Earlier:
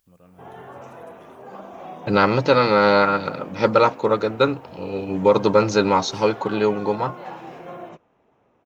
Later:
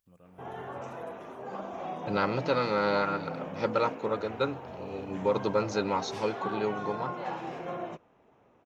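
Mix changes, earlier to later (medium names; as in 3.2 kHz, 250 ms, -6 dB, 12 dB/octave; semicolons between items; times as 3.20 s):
first voice -5.0 dB; second voice -11.5 dB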